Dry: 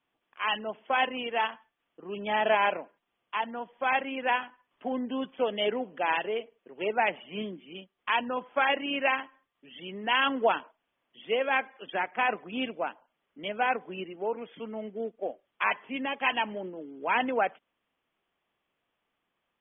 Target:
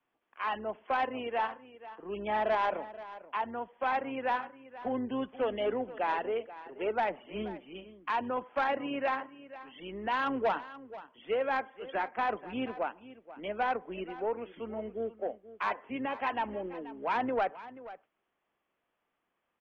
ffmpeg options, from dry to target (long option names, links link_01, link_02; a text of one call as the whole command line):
ffmpeg -i in.wav -filter_complex "[0:a]lowpass=2300,acrossover=split=220|1700[link_01][link_02][link_03];[link_01]tremolo=f=140:d=0.947[link_04];[link_02]asoftclip=type=tanh:threshold=-23.5dB[link_05];[link_03]acompressor=threshold=-45dB:ratio=6[link_06];[link_04][link_05][link_06]amix=inputs=3:normalize=0,aecho=1:1:482:0.158" out.wav